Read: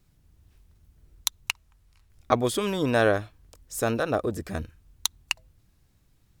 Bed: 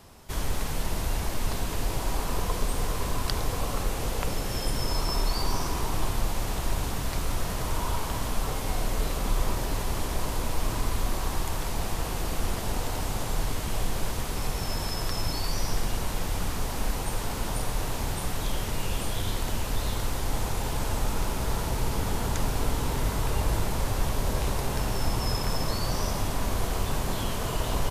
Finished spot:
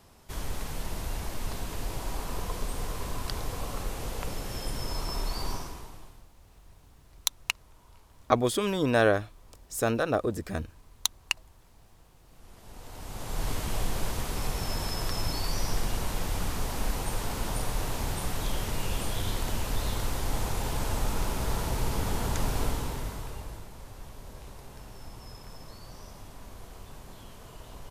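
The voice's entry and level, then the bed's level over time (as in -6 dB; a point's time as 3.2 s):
6.00 s, -1.0 dB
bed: 5.51 s -5.5 dB
6.29 s -29 dB
12.23 s -29 dB
13.49 s -1.5 dB
22.64 s -1.5 dB
23.69 s -18 dB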